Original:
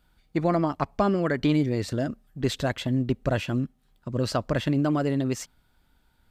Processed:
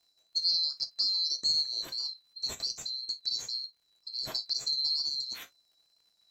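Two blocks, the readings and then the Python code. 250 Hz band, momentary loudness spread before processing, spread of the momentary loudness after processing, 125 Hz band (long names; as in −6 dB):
−35.5 dB, 9 LU, 10 LU, −33.5 dB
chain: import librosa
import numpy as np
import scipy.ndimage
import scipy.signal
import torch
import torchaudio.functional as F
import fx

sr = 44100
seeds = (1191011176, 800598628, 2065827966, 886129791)

y = fx.band_swap(x, sr, width_hz=4000)
y = fx.dmg_crackle(y, sr, seeds[0], per_s=110.0, level_db=-52.0)
y = fx.rev_gated(y, sr, seeds[1], gate_ms=80, shape='falling', drr_db=7.0)
y = fx.wow_flutter(y, sr, seeds[2], rate_hz=2.1, depth_cents=26.0)
y = F.gain(torch.from_numpy(y), -8.0).numpy()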